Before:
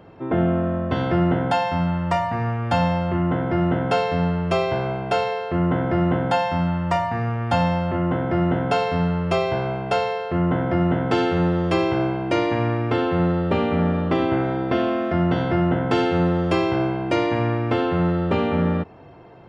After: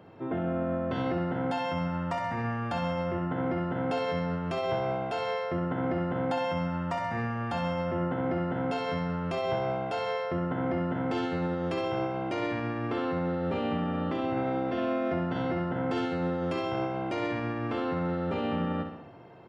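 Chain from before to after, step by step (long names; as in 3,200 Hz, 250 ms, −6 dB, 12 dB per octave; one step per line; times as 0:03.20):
high-pass filter 86 Hz
brickwall limiter −17.5 dBFS, peak gain reduction 9 dB
repeating echo 65 ms, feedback 54%, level −7 dB
level −5.5 dB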